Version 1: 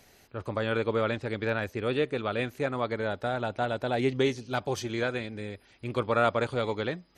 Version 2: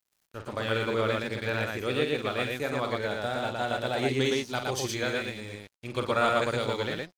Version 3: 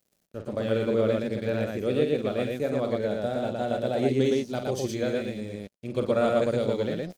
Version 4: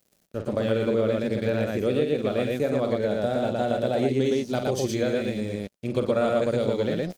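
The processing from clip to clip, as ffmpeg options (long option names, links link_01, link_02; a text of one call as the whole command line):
ffmpeg -i in.wav -filter_complex "[0:a]highshelf=frequency=2800:gain=9.5,asplit=2[link_01][link_02];[link_02]aecho=0:1:46.65|116.6:0.447|0.794[link_03];[link_01][link_03]amix=inputs=2:normalize=0,aeval=exprs='sgn(val(0))*max(abs(val(0))-0.00562,0)':channel_layout=same,volume=-2.5dB" out.wav
ffmpeg -i in.wav -af "firequalizer=gain_entry='entry(220,0);entry(580,5);entry(900,-8);entry(6100,-5)':delay=0.05:min_phase=1,areverse,acompressor=mode=upward:threshold=-33dB:ratio=2.5,areverse,equalizer=frequency=200:width_type=o:width=0.81:gain=8.5" out.wav
ffmpeg -i in.wav -af "acompressor=threshold=-28dB:ratio=2.5,volume=6dB" out.wav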